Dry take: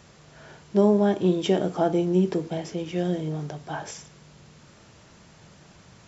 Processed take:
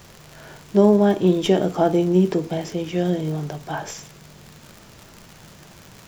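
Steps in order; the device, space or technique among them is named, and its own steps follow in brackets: record under a worn stylus (tracing distortion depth 0.026 ms; crackle 100/s -35 dBFS; pink noise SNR 32 dB); gain +4.5 dB

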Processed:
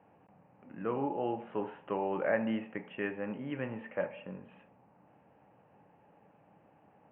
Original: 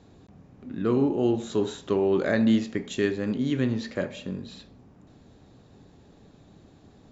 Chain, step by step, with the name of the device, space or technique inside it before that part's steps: steep low-pass 2900 Hz 96 dB/oct; kitchen radio (speaker cabinet 200–4000 Hz, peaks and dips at 250 Hz -9 dB, 380 Hz -9 dB, 540 Hz +4 dB, 860 Hz +9 dB); gain -5.5 dB

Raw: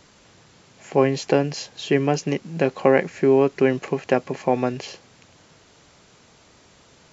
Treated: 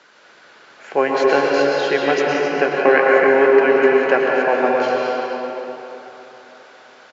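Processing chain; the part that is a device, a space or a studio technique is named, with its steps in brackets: station announcement (BPF 440–4200 Hz; bell 1500 Hz +10 dB 0.31 oct; loudspeakers at several distances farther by 61 m -11 dB, 91 m -9 dB; reverb RT60 3.5 s, pre-delay 0.102 s, DRR -2.5 dB); gain +3 dB

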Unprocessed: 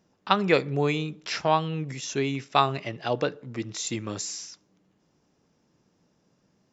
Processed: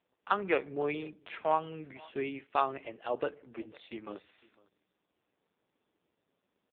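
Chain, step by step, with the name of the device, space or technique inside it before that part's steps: satellite phone (BPF 310–3200 Hz; echo 0.503 s -23.5 dB; gain -5 dB; AMR-NB 5.15 kbps 8000 Hz)

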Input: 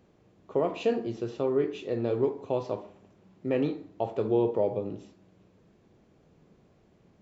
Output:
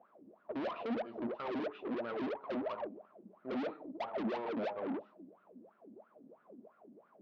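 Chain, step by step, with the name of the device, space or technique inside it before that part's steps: wah-wah guitar rig (wah 3 Hz 250–1400 Hz, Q 13; tube stage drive 55 dB, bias 0.4; speaker cabinet 87–4200 Hz, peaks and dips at 88 Hz -7 dB, 140 Hz -4 dB, 220 Hz +9 dB, 620 Hz +7 dB); gain +17 dB

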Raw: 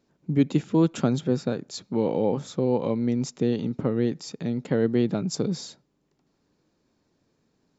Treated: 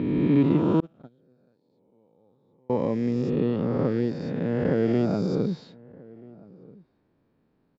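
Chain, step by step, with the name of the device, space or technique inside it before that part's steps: spectral swells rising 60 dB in 2.32 s; shout across a valley (air absorption 390 m; outdoor echo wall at 220 m, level -23 dB); 0.8–2.7 gate -14 dBFS, range -38 dB; gain -1.5 dB

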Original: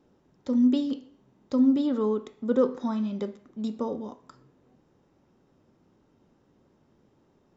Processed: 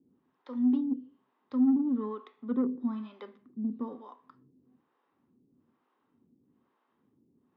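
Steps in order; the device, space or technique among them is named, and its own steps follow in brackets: guitar amplifier with harmonic tremolo (harmonic tremolo 1.1 Hz, depth 100%, crossover 460 Hz; soft clip -21 dBFS, distortion -17 dB; speaker cabinet 100–3700 Hz, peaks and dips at 250 Hz +9 dB, 590 Hz -7 dB, 1100 Hz +8 dB, 1800 Hz +3 dB); gain -4.5 dB

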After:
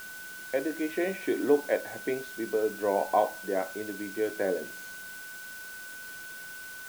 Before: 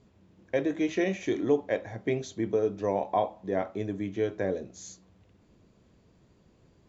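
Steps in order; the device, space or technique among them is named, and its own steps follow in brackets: shortwave radio (BPF 280–2800 Hz; tremolo 0.64 Hz, depth 40%; whine 1500 Hz -44 dBFS; white noise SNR 16 dB); gain +2.5 dB

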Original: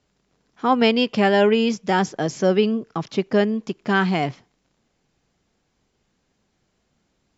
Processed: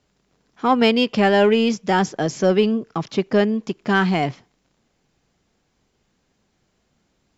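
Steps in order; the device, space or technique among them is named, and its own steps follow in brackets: parallel distortion (in parallel at -12 dB: hard clip -18.5 dBFS, distortion -8 dB)

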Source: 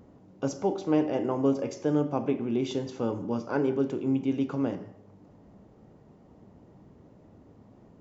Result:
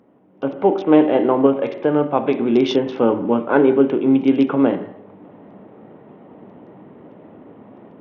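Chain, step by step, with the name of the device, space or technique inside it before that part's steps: 1.46–2.37 dynamic EQ 290 Hz, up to -6 dB, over -35 dBFS, Q 1; Bluetooth headset (HPF 230 Hz 12 dB/oct; AGC gain up to 13.5 dB; downsampling 8000 Hz; gain +1.5 dB; SBC 64 kbps 48000 Hz)

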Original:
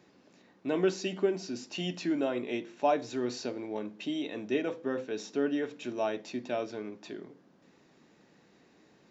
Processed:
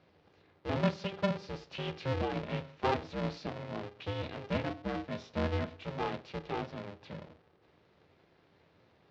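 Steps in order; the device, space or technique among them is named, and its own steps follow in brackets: ring modulator pedal into a guitar cabinet (polarity switched at an audio rate 200 Hz; speaker cabinet 85–4500 Hz, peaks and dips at 87 Hz +8 dB, 160 Hz +7 dB, 310 Hz +5 dB); gain -4.5 dB

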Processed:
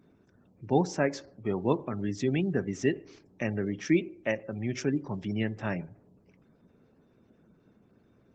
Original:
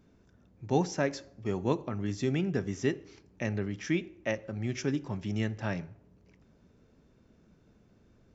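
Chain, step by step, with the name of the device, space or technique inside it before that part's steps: 3.62–4.18 dynamic EQ 390 Hz, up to +4 dB, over -42 dBFS, Q 1; noise-suppressed video call (HPF 120 Hz 12 dB/oct; spectral gate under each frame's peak -30 dB strong; gain +2.5 dB; Opus 16 kbps 48000 Hz)

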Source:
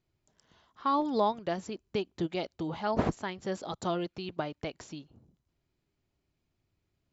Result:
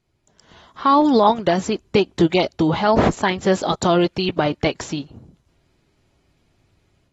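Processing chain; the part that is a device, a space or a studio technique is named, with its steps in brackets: low-bitrate web radio (AGC gain up to 8.5 dB; limiter -14.5 dBFS, peak gain reduction 8 dB; gain +8.5 dB; AAC 32 kbps 48000 Hz)

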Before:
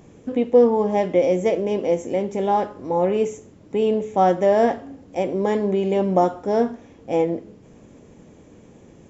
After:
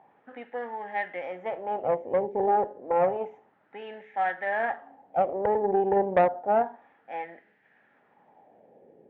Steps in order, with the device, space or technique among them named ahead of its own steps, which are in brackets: wah-wah guitar rig (wah 0.3 Hz 440–1800 Hz, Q 3.3; tube stage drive 19 dB, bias 0.65; speaker cabinet 96–3800 Hz, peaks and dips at 320 Hz -5 dB, 480 Hz -4 dB, 800 Hz +9 dB, 1100 Hz -9 dB, 1800 Hz +7 dB); gain +5.5 dB

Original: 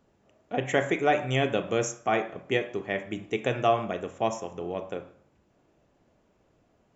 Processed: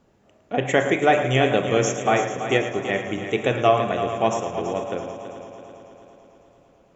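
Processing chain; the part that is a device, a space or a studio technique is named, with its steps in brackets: multi-head tape echo (multi-head echo 0.11 s, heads first and third, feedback 67%, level -11.5 dB; wow and flutter 23 cents); gain +5.5 dB

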